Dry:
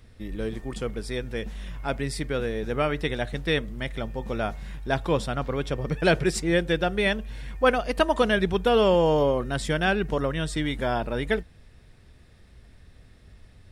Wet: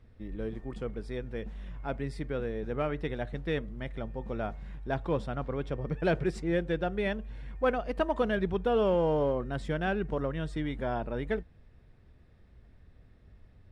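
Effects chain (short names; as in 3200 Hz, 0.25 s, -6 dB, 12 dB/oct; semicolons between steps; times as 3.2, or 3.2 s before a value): LPF 1300 Hz 6 dB/oct; in parallel at -12 dB: hard clip -19.5 dBFS, distortion -13 dB; on the sum: gain -7 dB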